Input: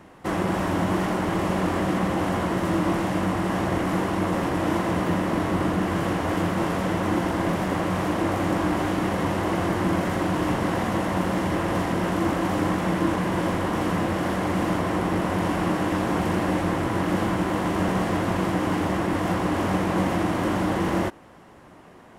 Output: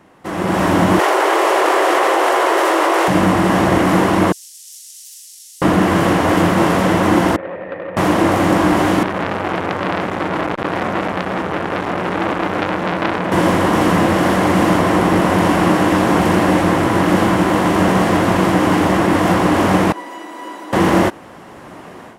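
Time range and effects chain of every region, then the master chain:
0.99–3.08 s: elliptic high-pass 380 Hz, stop band 60 dB + level flattener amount 100%
4.32–5.62 s: inverse Chebyshev high-pass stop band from 1 kHz, stop band 80 dB + loudspeaker Doppler distortion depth 0.56 ms
7.36–7.97 s: cascade formant filter e + transformer saturation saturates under 1 kHz
9.03–13.32 s: low-pass 2.7 kHz 6 dB/octave + transformer saturation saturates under 1.9 kHz
19.92–20.73 s: steep high-pass 260 Hz + feedback comb 980 Hz, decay 0.23 s, mix 90%
whole clip: bass shelf 80 Hz -10 dB; level rider gain up to 14 dB

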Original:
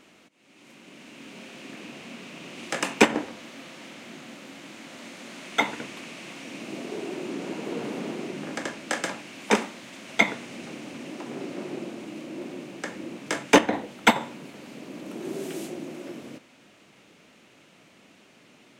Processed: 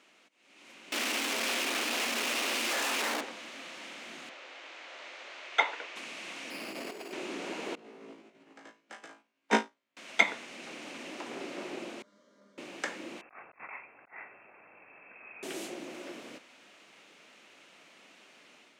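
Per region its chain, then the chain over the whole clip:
0.92–3.21 s: one-bit comparator + elliptic high-pass 220 Hz
4.29–5.96 s: high-pass 400 Hz 24 dB/octave + distance through air 120 m
6.50–7.13 s: careless resampling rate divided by 6×, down filtered, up hold + compressor with a negative ratio -36 dBFS, ratio -0.5
7.75–9.97 s: tilt EQ -2 dB/octave + flutter echo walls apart 3.1 m, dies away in 0.43 s + upward expansion 2.5:1, over -38 dBFS
12.02–12.58 s: low-pass 5.9 kHz + static phaser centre 520 Hz, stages 8 + feedback comb 200 Hz, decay 0.94 s, mix 90%
13.21–15.43 s: differentiator + compressor with a negative ratio -48 dBFS + frequency inversion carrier 2.9 kHz
whole clip: frequency weighting A; level rider gain up to 5.5 dB; trim -6 dB

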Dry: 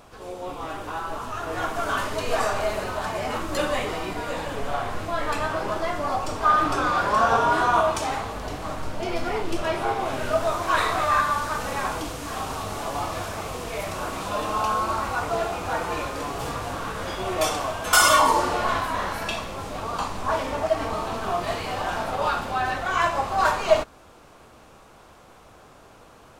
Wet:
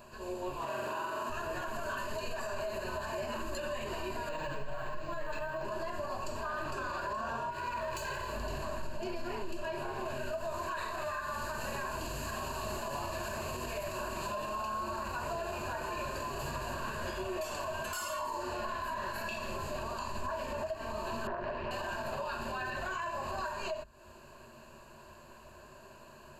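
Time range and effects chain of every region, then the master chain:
0.57–1.30 s: high-pass 150 Hz + flutter echo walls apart 7.8 m, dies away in 1.4 s
4.29–5.65 s: comb 6.5 ms, depth 86% + decimation joined by straight lines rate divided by 4×
7.50–8.34 s: comb filter that takes the minimum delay 2 ms + compression 4:1, threshold -25 dBFS
21.27–21.71 s: low-pass 1.8 kHz + loudspeaker Doppler distortion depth 0.66 ms
whole clip: rippled EQ curve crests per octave 1.4, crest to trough 14 dB; compression 6:1, threshold -25 dBFS; peak limiter -22.5 dBFS; trim -6 dB

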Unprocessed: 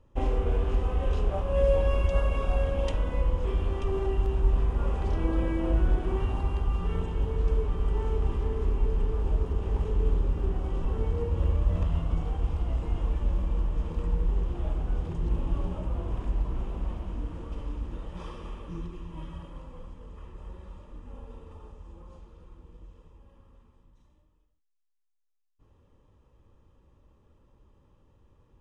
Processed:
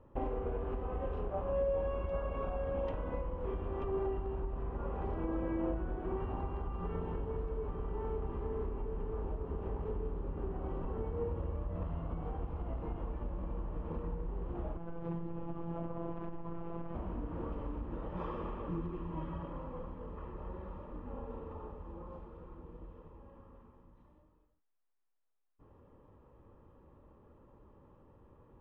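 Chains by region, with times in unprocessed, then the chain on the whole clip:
14.77–16.95 s: compression 2.5:1, threshold -29 dBFS + robot voice 168 Hz
whole clip: compression 4:1, threshold -35 dBFS; low-pass 1.4 kHz 12 dB/octave; bass shelf 120 Hz -11 dB; trim +6.5 dB

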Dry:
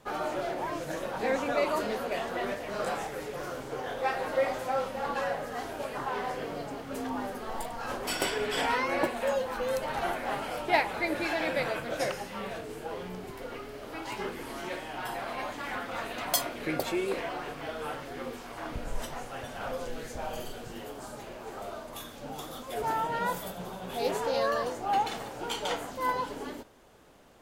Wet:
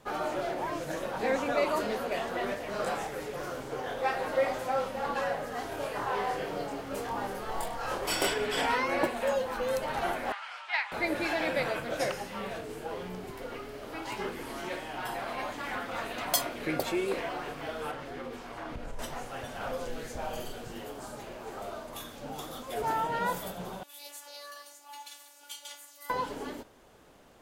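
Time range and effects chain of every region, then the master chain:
5.69–8.34 s: band-stop 240 Hz, Q 6 + doubling 25 ms -3 dB
10.32–10.92 s: high-pass 1.1 kHz 24 dB/octave + distance through air 120 m
17.91–18.99 s: treble shelf 6.6 kHz -8.5 dB + compression 3:1, threshold -35 dBFS
23.83–26.10 s: robot voice 288 Hz + differentiator
whole clip: none

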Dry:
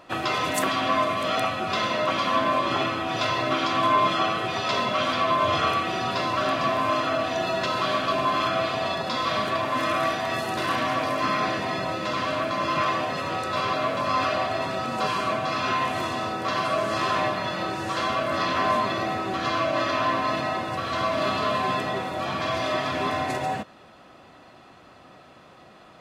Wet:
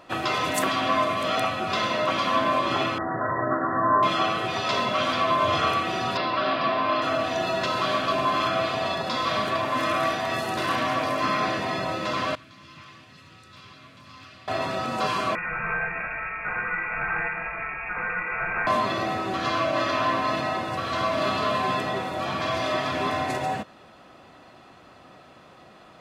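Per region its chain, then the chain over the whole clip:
2.98–4.03 s: brick-wall FIR low-pass 2 kHz + flutter echo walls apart 6.9 m, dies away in 0.21 s
6.17–7.02 s: steep low-pass 5 kHz 48 dB/octave + peaking EQ 92 Hz -8.5 dB 1.3 oct
12.35–14.48 s: amplifier tone stack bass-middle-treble 6-0-2 + loudspeaker Doppler distortion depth 0.12 ms
15.35–18.67 s: peaking EQ 470 Hz -8 dB 1.6 oct + frequency inversion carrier 2.6 kHz
whole clip: none

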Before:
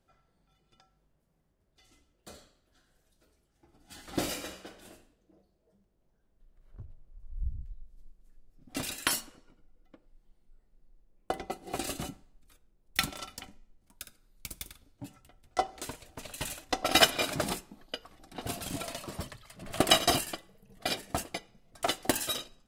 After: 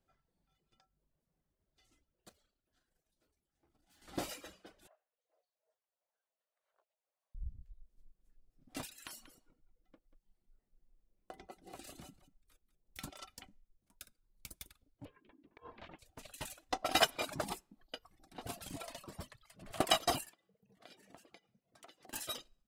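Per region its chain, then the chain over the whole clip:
2.29–4.02 s: hum notches 50/100/150/200 Hz + valve stage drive 59 dB, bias 0.55
4.87–7.35 s: steep high-pass 540 Hz + low-pass that closes with the level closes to 1.6 kHz, closed at -59 dBFS + band-stop 5.2 kHz
8.86–13.04 s: compression 3:1, threshold -40 dBFS + delay 188 ms -12 dB
15.05–15.99 s: inverse Chebyshev low-pass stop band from 11 kHz, stop band 70 dB + compressor with a negative ratio -44 dBFS + ring modulator 290 Hz
20.29–22.13 s: high-pass 130 Hz + peaking EQ 12 kHz -7 dB 1.4 oct + compression 10:1, threshold -45 dBFS
whole clip: reverb removal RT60 0.6 s; dynamic bell 900 Hz, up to +6 dB, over -46 dBFS, Q 1.4; trim -8.5 dB

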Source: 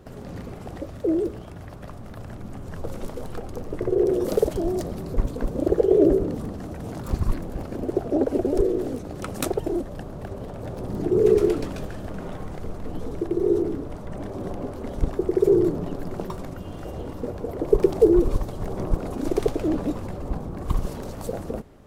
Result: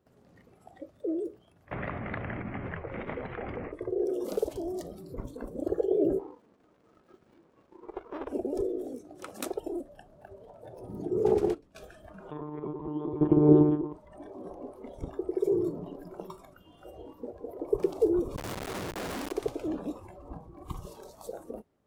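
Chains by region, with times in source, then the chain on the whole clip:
1.71–3.72 s: resonant low-pass 2.1 kHz, resonance Q 4.6 + level flattener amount 100%
6.19–8.28 s: band-pass 400–6700 Hz + sliding maximum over 33 samples
11.24–11.75 s: gate -23 dBFS, range -14 dB + bass shelf 270 Hz +6.5 dB + loudspeaker Doppler distortion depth 0.32 ms
12.31–13.93 s: peaking EQ 640 Hz -12.5 dB 0.24 oct + small resonant body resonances 350/920 Hz, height 17 dB, ringing for 30 ms + monotone LPC vocoder at 8 kHz 150 Hz
18.36–19.32 s: one-bit comparator + loudspeaker Doppler distortion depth 0.3 ms
whole clip: spectral noise reduction 13 dB; high-pass 120 Hz 6 dB/octave; trim -8.5 dB

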